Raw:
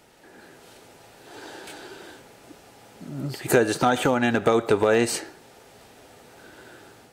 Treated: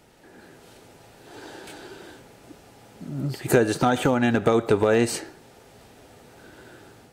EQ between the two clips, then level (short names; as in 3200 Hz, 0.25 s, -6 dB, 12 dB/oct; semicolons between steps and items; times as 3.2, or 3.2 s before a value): low shelf 280 Hz +7 dB; -2.0 dB